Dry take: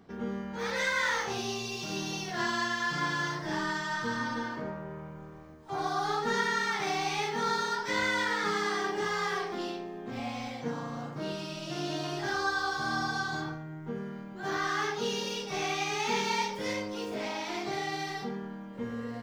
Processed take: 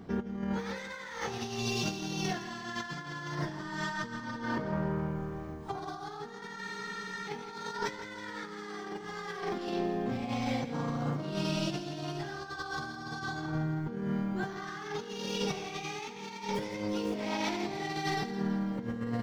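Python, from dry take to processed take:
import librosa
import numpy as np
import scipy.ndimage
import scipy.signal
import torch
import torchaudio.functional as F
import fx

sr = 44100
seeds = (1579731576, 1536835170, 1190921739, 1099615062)

p1 = fx.low_shelf(x, sr, hz=370.0, db=7.0)
p2 = fx.over_compress(p1, sr, threshold_db=-35.0, ratio=-0.5)
p3 = p2 + fx.echo_feedback(p2, sr, ms=164, feedback_pct=52, wet_db=-12.5, dry=0)
y = fx.spec_freeze(p3, sr, seeds[0], at_s=6.63, hold_s=0.66)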